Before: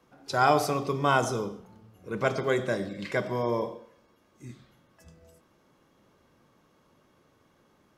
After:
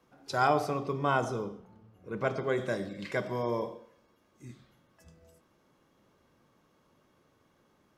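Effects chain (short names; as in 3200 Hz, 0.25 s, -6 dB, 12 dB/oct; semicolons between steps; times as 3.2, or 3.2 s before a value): 0.47–2.58 high shelf 3700 Hz -10.5 dB; gain -3.5 dB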